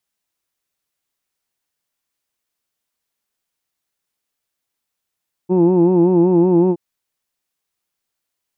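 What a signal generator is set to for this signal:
vowel from formants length 1.27 s, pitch 177 Hz, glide 0 semitones, F1 330 Hz, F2 890 Hz, F3 2,600 Hz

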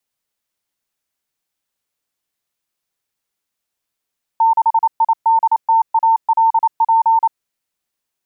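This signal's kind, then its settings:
Morse code "6IDTALP" 28 words per minute 903 Hz −9 dBFS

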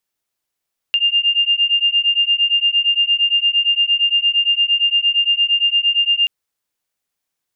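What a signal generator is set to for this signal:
two tones that beat 2,800 Hz, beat 8.7 Hz, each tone −16 dBFS 5.33 s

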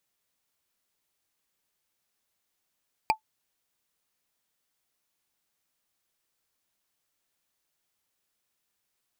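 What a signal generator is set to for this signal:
struck wood, lowest mode 873 Hz, decay 0.10 s, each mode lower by 3.5 dB, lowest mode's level −14.5 dB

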